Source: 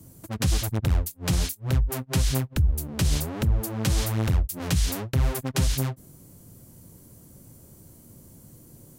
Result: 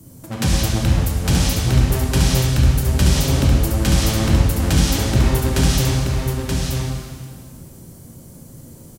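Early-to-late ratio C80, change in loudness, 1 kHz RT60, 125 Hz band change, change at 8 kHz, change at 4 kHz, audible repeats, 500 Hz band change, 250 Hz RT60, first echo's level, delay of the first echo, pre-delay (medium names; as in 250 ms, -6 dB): -1.0 dB, +8.0 dB, 1.9 s, +9.0 dB, +8.5 dB, +9.5 dB, 1, +10.0 dB, 1.9 s, -4.5 dB, 928 ms, 8 ms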